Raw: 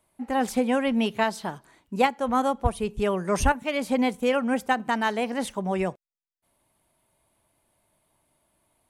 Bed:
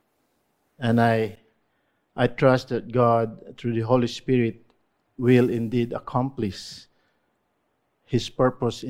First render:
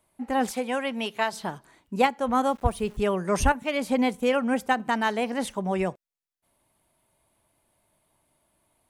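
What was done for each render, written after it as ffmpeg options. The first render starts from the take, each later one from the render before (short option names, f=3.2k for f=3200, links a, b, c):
-filter_complex "[0:a]asettb=1/sr,asplit=3[a][b][c];[a]atrim=end=0.514[d];[b]atrim=start=0.51:end=1.33,asetpts=PTS-STARTPTS,afade=t=in:d=0.004:c=qsin,afade=t=out:st=0.816:d=0.004:c=qsin,highpass=f=610:p=1[e];[c]atrim=start=1.326[f];[d][e]acrossfade=d=0.004:c1=hsin:c2=qsin[g];[g][f]acrossfade=d=0.004:c1=qsin:c2=hsin,asettb=1/sr,asplit=3[h][i][j];[h]atrim=end=2.504[k];[i]atrim=start=2.5:end=3.01,asetpts=PTS-STARTPTS,afade=t=in:d=0.004:c=qsin,afade=t=out:st=0.506:d=0.004:c=qsin,aeval=exprs='val(0)*gte(abs(val(0)),0.00422)':c=same[l];[j]atrim=start=3.006[m];[k][l]acrossfade=d=0.004:c1=hsin:c2=qsin[n];[n][m]acrossfade=d=0.004:c1=qsin:c2=hsin"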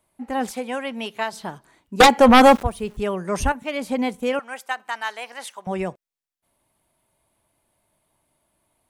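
-filter_complex "[0:a]asettb=1/sr,asplit=3[a][b][c];[a]atrim=end=2.004[d];[b]atrim=start=2:end=2.63,asetpts=PTS-STARTPTS,afade=t=in:d=0.004:c=qsin,afade=t=out:st=0.626:d=0.004:c=qsin,aeval=exprs='0.531*sin(PI/2*4.47*val(0)/0.531)':c=same[e];[c]atrim=start=2.626[f];[d][e]acrossfade=d=0.004:c1=hsin:c2=qsin[g];[g][f]acrossfade=d=0.004:c1=qsin:c2=hsin,asettb=1/sr,asplit=3[h][i][j];[h]atrim=end=4.394[k];[i]atrim=start=4.39:end=5.67,asetpts=PTS-STARTPTS,afade=t=in:d=0.004:c=qsin,afade=t=out:st=1.276:d=0.004:c=qsin,highpass=960[l];[j]atrim=start=5.666[m];[k][l]acrossfade=d=0.004:c1=hsin:c2=qsin[n];[n][m]acrossfade=d=0.004:c1=qsin:c2=hsin"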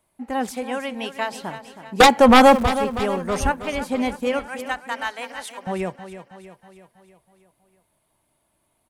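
-af "aecho=1:1:321|642|963|1284|1605|1926:0.251|0.138|0.076|0.0418|0.023|0.0126"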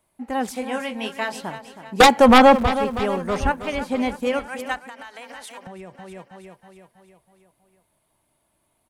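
-filter_complex "[0:a]asettb=1/sr,asplit=3[a][b][c];[a]atrim=end=0.534[d];[b]atrim=start=0.53:end=1.41,asetpts=PTS-STARTPTS,afade=t=in:d=0.004:c=qsin,afade=t=out:st=0.876:d=0.004:c=qsin,asplit=2[e][f];[f]adelay=23,volume=-7dB[g];[e][g]amix=inputs=2:normalize=0,atrim=end_sample=38808[h];[c]atrim=start=1.406[i];[d][h]acrossfade=d=0.004:c1=hsin:c2=qsin[j];[j][i]acrossfade=d=0.004:c1=qsin:c2=hsin,asettb=1/sr,asplit=3[k][l][m];[k]atrim=end=2.384[n];[l]atrim=start=2.38:end=4.17,asetpts=PTS-STARTPTS,afade=t=in:d=0.004:c=qsin,afade=t=out:st=1.786:d=0.004:c=qsin,acrossover=split=4900[o][p];[p]acompressor=threshold=-46dB:ratio=4:attack=1:release=60[q];[o][q]amix=inputs=2:normalize=0[r];[m]atrim=start=4.166[s];[n][r]acrossfade=d=0.004:c1=hsin:c2=qsin[t];[t][s]acrossfade=d=0.004:c1=qsin:c2=hsin,asplit=3[u][v][w];[u]afade=t=out:st=4.78:d=0.02[x];[v]acompressor=threshold=-34dB:ratio=16:attack=3.2:release=140:knee=1:detection=peak,afade=t=in:st=4.78:d=0.02,afade=t=out:st=6.15:d=0.02[y];[w]afade=t=in:st=6.15:d=0.02[z];[x][y][z]amix=inputs=3:normalize=0"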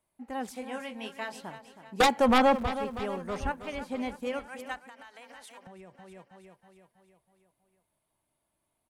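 -af "volume=-10.5dB"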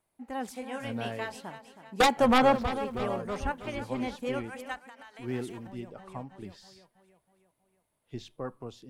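-filter_complex "[1:a]volume=-17dB[a];[0:a][a]amix=inputs=2:normalize=0"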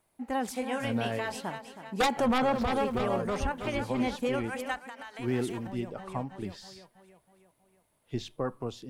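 -af "acontrast=49,alimiter=limit=-20dB:level=0:latency=1:release=81"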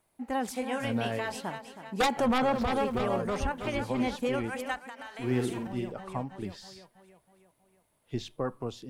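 -filter_complex "[0:a]asettb=1/sr,asplit=3[a][b][c];[a]atrim=end=4.954[d];[b]atrim=start=4.95:end=5.92,asetpts=PTS-STARTPTS,afade=t=in:d=0.004:c=qsin,afade=t=out:st=0.966:d=0.004:c=qsin,asplit=2[e][f];[f]adelay=48,volume=-6.5dB[g];[e][g]amix=inputs=2:normalize=0,atrim=end_sample=42777[h];[c]atrim=start=5.916[i];[d][h]acrossfade=d=0.004:c1=hsin:c2=qsin[j];[j][i]acrossfade=d=0.004:c1=qsin:c2=hsin"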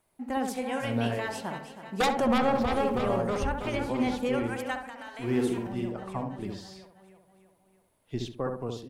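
-filter_complex "[0:a]asplit=2[a][b];[b]adelay=68,lowpass=f=990:p=1,volume=-3dB,asplit=2[c][d];[d]adelay=68,lowpass=f=990:p=1,volume=0.38,asplit=2[e][f];[f]adelay=68,lowpass=f=990:p=1,volume=0.38,asplit=2[g][h];[h]adelay=68,lowpass=f=990:p=1,volume=0.38,asplit=2[i][j];[j]adelay=68,lowpass=f=990:p=1,volume=0.38[k];[a][c][e][g][i][k]amix=inputs=6:normalize=0"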